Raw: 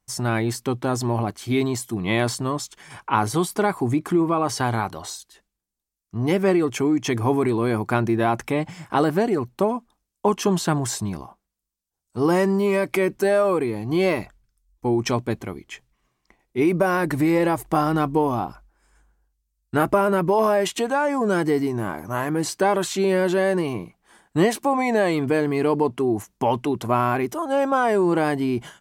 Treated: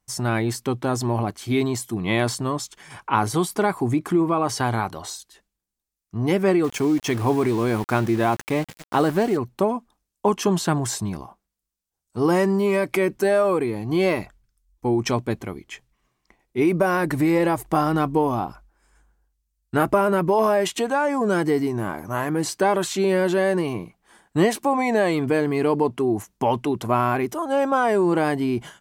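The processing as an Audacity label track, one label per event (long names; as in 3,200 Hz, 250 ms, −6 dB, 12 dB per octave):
6.640000	9.370000	centre clipping without the shift under −32.5 dBFS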